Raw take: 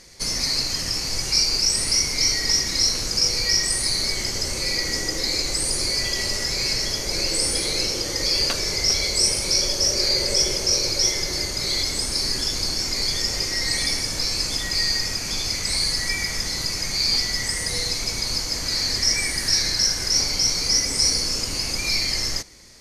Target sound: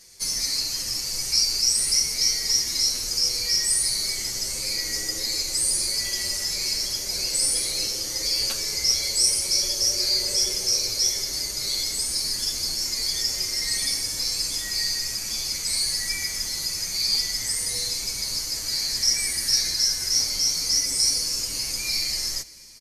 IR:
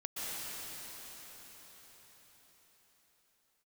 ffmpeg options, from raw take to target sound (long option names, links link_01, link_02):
-filter_complex "[0:a]aemphasis=mode=production:type=75kf,asplit=2[link_01][link_02];[1:a]atrim=start_sample=2205[link_03];[link_02][link_03]afir=irnorm=-1:irlink=0,volume=-24dB[link_04];[link_01][link_04]amix=inputs=2:normalize=0,asplit=2[link_05][link_06];[link_06]adelay=8.1,afreqshift=0.29[link_07];[link_05][link_07]amix=inputs=2:normalize=1,volume=-7.5dB"